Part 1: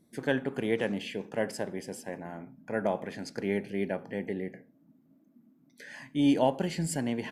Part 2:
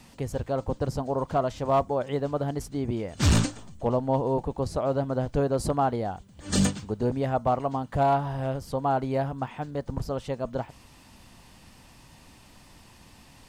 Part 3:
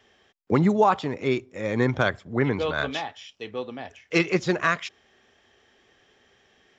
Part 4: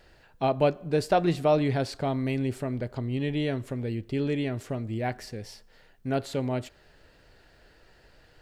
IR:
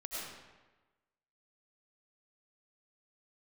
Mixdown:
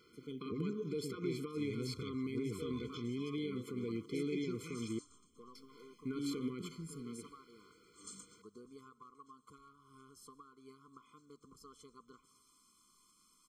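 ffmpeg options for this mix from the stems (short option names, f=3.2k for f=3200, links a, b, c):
-filter_complex "[0:a]volume=-15dB[a];[1:a]equalizer=f=125:t=o:w=1:g=-11,equalizer=f=250:t=o:w=1:g=-5,equalizer=f=500:t=o:w=1:g=-9,equalizer=f=1k:t=o:w=1:g=8,equalizer=f=2k:t=o:w=1:g=-11,equalizer=f=8k:t=o:w=1:g=9,acompressor=threshold=-34dB:ratio=8,adelay=1550,volume=-13dB,asplit=2[b][c];[c]volume=-20.5dB[d];[2:a]volume=-15dB,asplit=2[e][f];[3:a]alimiter=limit=-23dB:level=0:latency=1:release=114,volume=-2dB,asplit=3[g][h][i];[g]atrim=end=4.99,asetpts=PTS-STARTPTS,afade=t=out:st=4.986:d=0.004:c=hsin[j];[h]atrim=start=4.99:end=5.55,asetpts=PTS-STARTPTS,volume=0[k];[i]atrim=start=5.55,asetpts=PTS-STARTPTS,afade=t=in:d=0.004:c=hsin[l];[j][k][l]concat=n=3:v=0:a=1[m];[f]apad=whole_len=322380[n];[a][n]sidechaincompress=threshold=-49dB:ratio=8:attack=16:release=328[o];[o][e]amix=inputs=2:normalize=0,asuperstop=centerf=1200:order=4:qfactor=0.65,alimiter=level_in=8dB:limit=-24dB:level=0:latency=1:release=144,volume=-8dB,volume=0dB[p];[b][m]amix=inputs=2:normalize=0,highpass=210,alimiter=level_in=6dB:limit=-24dB:level=0:latency=1:release=58,volume=-6dB,volume=0dB[q];[4:a]atrim=start_sample=2205[r];[d][r]afir=irnorm=-1:irlink=0[s];[p][q][s]amix=inputs=3:normalize=0,afftfilt=real='re*eq(mod(floor(b*sr/1024/500),2),0)':imag='im*eq(mod(floor(b*sr/1024/500),2),0)':win_size=1024:overlap=0.75"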